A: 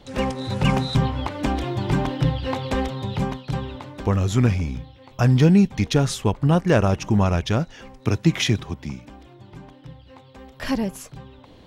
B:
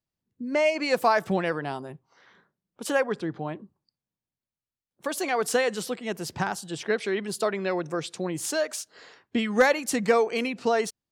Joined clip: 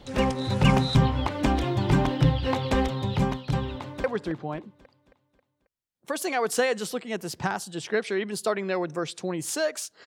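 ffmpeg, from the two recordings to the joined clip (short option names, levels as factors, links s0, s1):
-filter_complex "[0:a]apad=whole_dur=10.06,atrim=end=10.06,atrim=end=4.042[s0];[1:a]atrim=start=2.998:end=9.02[s1];[s0][s1]acrossfade=d=0.004:c1=hsin:c2=hsin,asplit=2[s2][s3];[s3]afade=t=in:st=3.75:d=0.01,afade=t=out:st=4.04:d=0.01,aecho=0:1:270|540|810|1080|1350|1620:0.334965|0.167483|0.0837414|0.0418707|0.0209353|0.0104677[s4];[s2][s4]amix=inputs=2:normalize=0"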